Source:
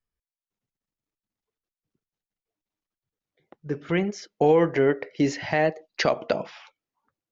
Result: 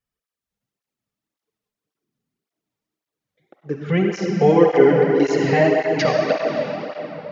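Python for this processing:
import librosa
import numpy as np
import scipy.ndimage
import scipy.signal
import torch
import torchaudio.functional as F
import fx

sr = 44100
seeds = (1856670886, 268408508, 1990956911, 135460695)

y = fx.hpss(x, sr, part='percussive', gain_db=-5)
y = fx.rev_freeverb(y, sr, rt60_s=4.3, hf_ratio=0.7, predelay_ms=25, drr_db=-0.5)
y = fx.flanger_cancel(y, sr, hz=1.8, depth_ms=3.3)
y = F.gain(torch.from_numpy(y), 8.0).numpy()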